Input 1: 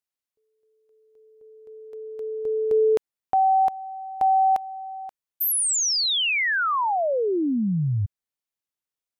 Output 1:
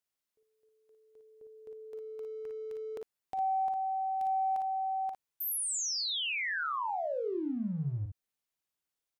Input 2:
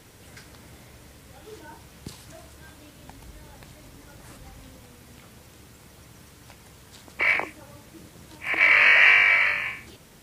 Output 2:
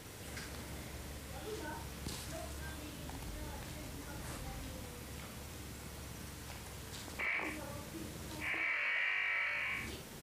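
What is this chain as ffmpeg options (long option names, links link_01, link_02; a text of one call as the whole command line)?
ffmpeg -i in.wav -af "acompressor=threshold=-34dB:ratio=8:attack=0.17:release=32:knee=6:detection=peak,aecho=1:1:43|56:0.251|0.531" out.wav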